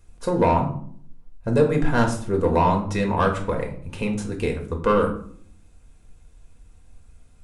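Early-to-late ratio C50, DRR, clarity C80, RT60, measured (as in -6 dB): 9.5 dB, 1.0 dB, 13.0 dB, 0.60 s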